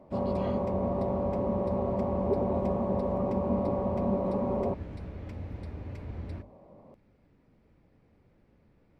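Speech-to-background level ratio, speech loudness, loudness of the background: 11.0 dB, -30.0 LUFS, -41.0 LUFS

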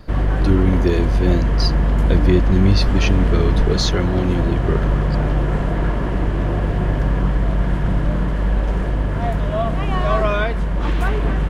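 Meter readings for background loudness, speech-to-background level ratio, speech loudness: -20.0 LUFS, -1.0 dB, -21.0 LUFS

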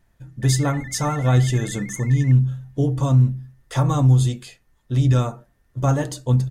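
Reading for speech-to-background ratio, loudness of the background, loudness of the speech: 18.0 dB, -38.5 LUFS, -20.5 LUFS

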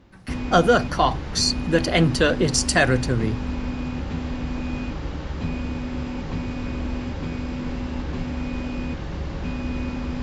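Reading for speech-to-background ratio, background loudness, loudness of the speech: 9.0 dB, -29.5 LUFS, -20.5 LUFS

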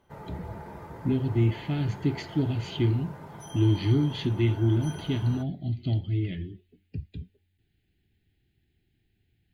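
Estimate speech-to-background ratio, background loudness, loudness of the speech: 15.0 dB, -42.5 LUFS, -27.5 LUFS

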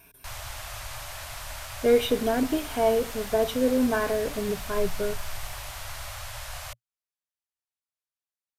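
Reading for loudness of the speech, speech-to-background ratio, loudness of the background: -26.0 LUFS, 11.5 dB, -37.5 LUFS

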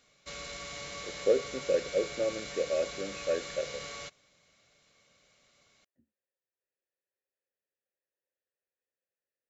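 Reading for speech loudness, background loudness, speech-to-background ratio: -32.5 LUFS, -40.5 LUFS, 8.0 dB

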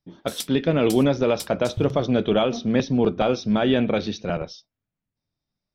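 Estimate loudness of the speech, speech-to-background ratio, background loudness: -22.5 LUFS, 14.5 dB, -37.0 LUFS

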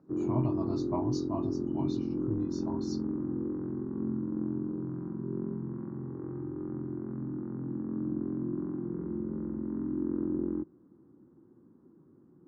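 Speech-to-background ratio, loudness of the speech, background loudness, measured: -3.5 dB, -38.0 LUFS, -34.5 LUFS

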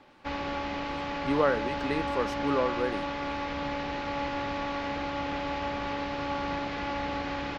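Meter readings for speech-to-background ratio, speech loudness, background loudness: 2.0 dB, -31.0 LUFS, -33.0 LUFS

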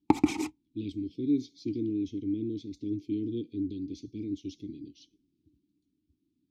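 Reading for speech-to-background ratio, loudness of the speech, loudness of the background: -5.0 dB, -34.5 LUFS, -29.5 LUFS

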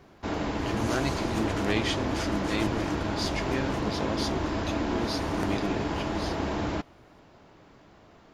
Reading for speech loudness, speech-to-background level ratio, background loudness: -33.5 LUFS, -3.0 dB, -30.5 LUFS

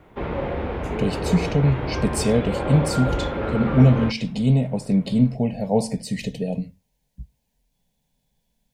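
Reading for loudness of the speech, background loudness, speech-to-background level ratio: -22.0 LUFS, -27.0 LUFS, 5.0 dB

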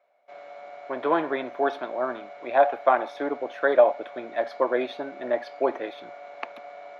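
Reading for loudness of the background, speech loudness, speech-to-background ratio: -43.0 LUFS, -25.5 LUFS, 17.5 dB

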